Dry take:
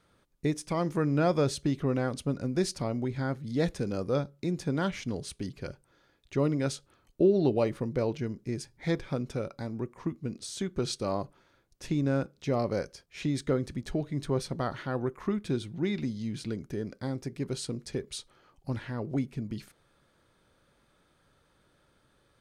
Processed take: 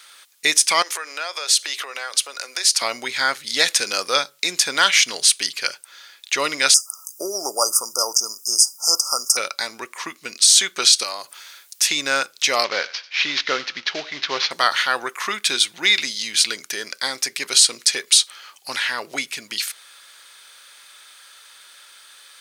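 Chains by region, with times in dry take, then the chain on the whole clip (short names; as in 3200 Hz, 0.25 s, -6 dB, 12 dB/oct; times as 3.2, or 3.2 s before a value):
0.82–2.82 HPF 400 Hz 24 dB/oct + compressor 3:1, threshold -43 dBFS
6.74–9.37 brick-wall FIR band-stop 1400–4800 Hz + tilt +4 dB/oct
11.03–11.87 high shelf 6700 Hz +9 dB + compressor 2:1, threshold -44 dBFS
12.64–14.51 CVSD 32 kbps + air absorption 200 m + thinning echo 93 ms, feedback 45%, high-pass 710 Hz, level -17 dB
whole clip: Bessel high-pass 3000 Hz, order 2; maximiser +31.5 dB; gain -1 dB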